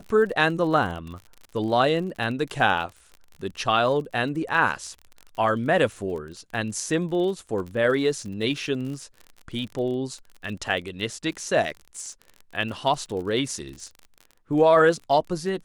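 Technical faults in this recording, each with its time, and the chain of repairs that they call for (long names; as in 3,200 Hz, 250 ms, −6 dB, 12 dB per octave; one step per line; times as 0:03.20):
surface crackle 40 per second −33 dBFS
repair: click removal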